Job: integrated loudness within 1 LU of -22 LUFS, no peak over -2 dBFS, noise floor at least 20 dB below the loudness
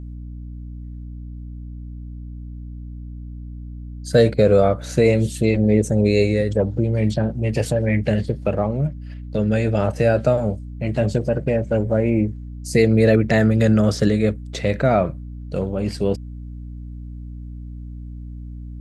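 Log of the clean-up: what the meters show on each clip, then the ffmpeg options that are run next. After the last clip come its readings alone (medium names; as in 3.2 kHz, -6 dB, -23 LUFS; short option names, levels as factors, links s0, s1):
hum 60 Hz; highest harmonic 300 Hz; hum level -31 dBFS; loudness -19.5 LUFS; peak level -4.0 dBFS; loudness target -22.0 LUFS
-> -af "bandreject=f=60:t=h:w=4,bandreject=f=120:t=h:w=4,bandreject=f=180:t=h:w=4,bandreject=f=240:t=h:w=4,bandreject=f=300:t=h:w=4"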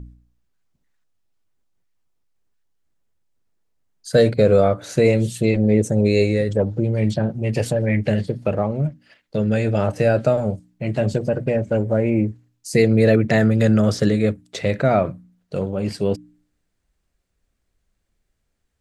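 hum not found; loudness -19.5 LUFS; peak level -3.5 dBFS; loudness target -22.0 LUFS
-> -af "volume=0.75"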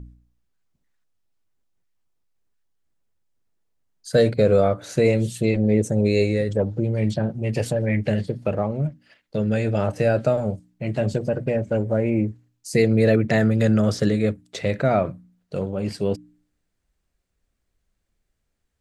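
loudness -22.0 LUFS; peak level -6.0 dBFS; noise floor -75 dBFS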